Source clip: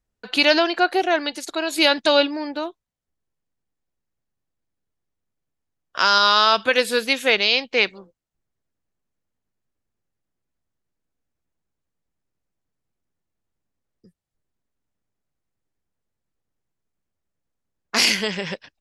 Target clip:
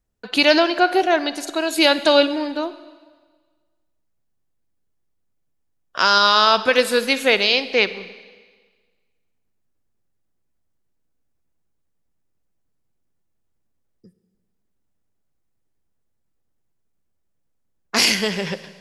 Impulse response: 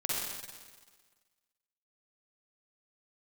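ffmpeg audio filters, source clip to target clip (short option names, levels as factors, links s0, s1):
-filter_complex "[0:a]equalizer=f=2600:w=0.33:g=-3.5,asplit=2[s0][s1];[1:a]atrim=start_sample=2205[s2];[s1][s2]afir=irnorm=-1:irlink=0,volume=0.119[s3];[s0][s3]amix=inputs=2:normalize=0,volume=1.41"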